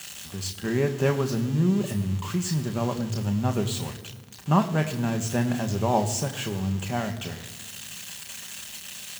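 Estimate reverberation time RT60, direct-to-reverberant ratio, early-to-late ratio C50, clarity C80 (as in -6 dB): 1.6 s, 5.0 dB, 12.5 dB, 13.5 dB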